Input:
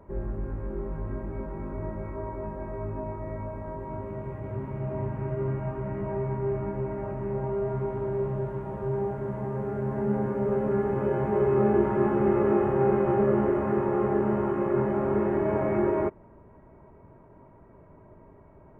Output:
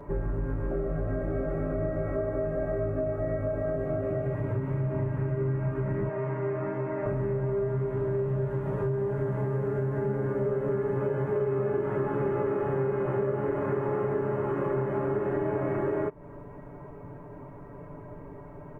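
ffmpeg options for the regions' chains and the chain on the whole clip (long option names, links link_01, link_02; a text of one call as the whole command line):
ffmpeg -i in.wav -filter_complex "[0:a]asettb=1/sr,asplit=3[link_01][link_02][link_03];[link_01]atrim=end=0.714[link_04];[link_02]atrim=start=0.71:end=4.35,asetpts=PTS-STARTPTS,afade=type=in:duration=0.004:curve=qsin,afade=type=out:start_time=3.636:duration=0.004:curve=qsin,asuperstop=centerf=950:order=12:qfactor=4,equalizer=frequency=670:width_type=o:width=0.8:gain=9.5[link_05];[link_03]atrim=start=4.346[link_06];[link_04][link_05]acrossfade=duration=0.004:curve1=hsin:curve2=qsin[link_07];[link_07][link_06]acrossfade=duration=0.004:curve1=qsin:curve2=hsin,asettb=1/sr,asplit=3[link_08][link_09][link_10];[link_08]atrim=end=6.094[link_11];[link_09]atrim=start=6.09:end=7.06,asetpts=PTS-STARTPTS,afade=type=in:duration=0.004:curve=qsin,afade=type=out:start_time=0.966:duration=0.004:curve=qsin,highpass=frequency=610:poles=1,aemphasis=mode=reproduction:type=50fm,aecho=1:1:6.5:0.4,atrim=end_sample=42777[link_12];[link_10]atrim=start=7.056[link_13];[link_11][link_12]acrossfade=duration=0.004:curve1=hsin:curve2=qsin[link_14];[link_14][link_13]acrossfade=duration=0.004:curve1=qsin:curve2=hsin,aecho=1:1:6.9:0.74,acompressor=threshold=-33dB:ratio=6,volume=7dB" out.wav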